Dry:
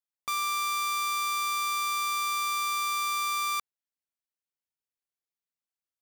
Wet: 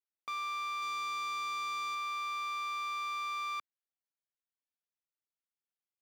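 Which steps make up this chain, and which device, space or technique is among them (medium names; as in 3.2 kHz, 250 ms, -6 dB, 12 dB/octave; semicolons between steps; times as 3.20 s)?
0.82–1.95 s: tone controls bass +9 dB, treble +4 dB; early digital voice recorder (band-pass 220–3600 Hz; block-companded coder 5-bit); trim -6.5 dB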